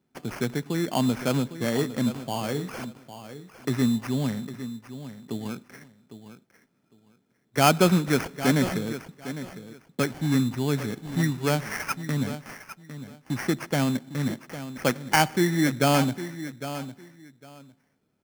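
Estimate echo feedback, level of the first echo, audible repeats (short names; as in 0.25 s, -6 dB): 19%, -12.5 dB, 2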